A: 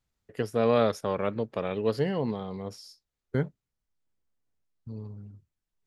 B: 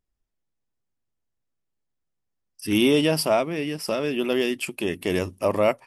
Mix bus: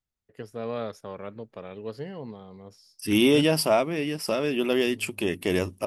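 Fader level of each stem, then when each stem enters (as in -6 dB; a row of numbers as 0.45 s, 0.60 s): -9.0 dB, -0.5 dB; 0.00 s, 0.40 s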